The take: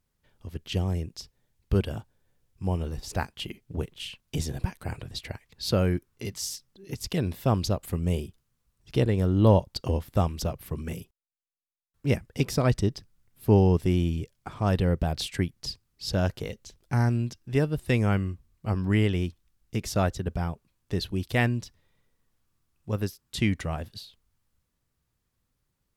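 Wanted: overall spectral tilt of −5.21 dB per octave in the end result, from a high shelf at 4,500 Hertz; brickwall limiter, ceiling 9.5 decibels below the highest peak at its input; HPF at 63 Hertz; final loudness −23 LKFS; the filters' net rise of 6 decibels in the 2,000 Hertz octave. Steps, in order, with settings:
high-pass filter 63 Hz
parametric band 2,000 Hz +6.5 dB
high-shelf EQ 4,500 Hz +3.5 dB
level +7.5 dB
brickwall limiter −8.5 dBFS

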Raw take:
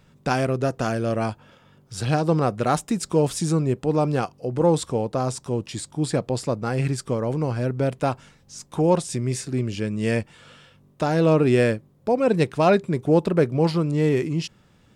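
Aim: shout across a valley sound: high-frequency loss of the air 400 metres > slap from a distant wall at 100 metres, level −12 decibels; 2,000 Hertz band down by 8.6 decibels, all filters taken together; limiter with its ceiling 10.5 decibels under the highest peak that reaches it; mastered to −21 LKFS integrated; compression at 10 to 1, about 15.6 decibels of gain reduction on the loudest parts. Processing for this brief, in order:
parametric band 2,000 Hz −7 dB
downward compressor 10 to 1, threshold −30 dBFS
brickwall limiter −30 dBFS
high-frequency loss of the air 400 metres
slap from a distant wall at 100 metres, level −12 dB
level +19 dB

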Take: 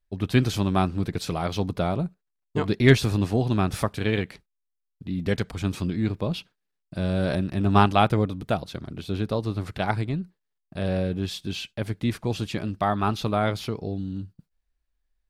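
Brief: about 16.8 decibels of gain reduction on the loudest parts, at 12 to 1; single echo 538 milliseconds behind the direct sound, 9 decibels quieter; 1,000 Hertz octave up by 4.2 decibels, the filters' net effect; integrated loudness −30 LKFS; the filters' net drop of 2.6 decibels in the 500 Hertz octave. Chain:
parametric band 500 Hz −6 dB
parametric band 1,000 Hz +8 dB
downward compressor 12 to 1, threshold −27 dBFS
single-tap delay 538 ms −9 dB
level +3 dB

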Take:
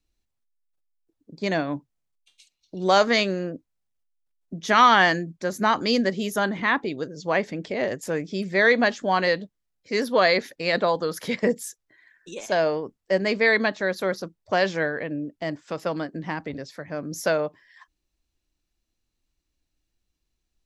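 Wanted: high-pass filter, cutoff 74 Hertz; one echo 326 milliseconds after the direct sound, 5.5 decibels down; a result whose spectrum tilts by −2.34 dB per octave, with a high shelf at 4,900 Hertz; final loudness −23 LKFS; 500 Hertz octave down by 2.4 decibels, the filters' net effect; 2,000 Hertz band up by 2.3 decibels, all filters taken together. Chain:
high-pass filter 74 Hz
parametric band 500 Hz −3 dB
parametric band 2,000 Hz +4 dB
high-shelf EQ 4,900 Hz −8.5 dB
single-tap delay 326 ms −5.5 dB
level −0.5 dB

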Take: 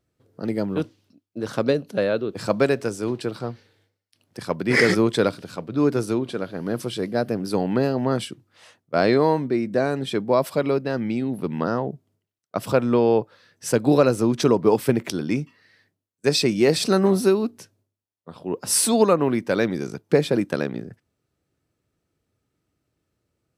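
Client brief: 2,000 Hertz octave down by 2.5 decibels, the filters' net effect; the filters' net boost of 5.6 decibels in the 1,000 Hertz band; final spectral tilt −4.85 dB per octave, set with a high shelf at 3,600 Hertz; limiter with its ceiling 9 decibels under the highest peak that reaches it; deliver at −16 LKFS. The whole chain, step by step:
parametric band 1,000 Hz +8.5 dB
parametric band 2,000 Hz −7 dB
high-shelf EQ 3,600 Hz +3.5 dB
level +7.5 dB
brickwall limiter −2.5 dBFS

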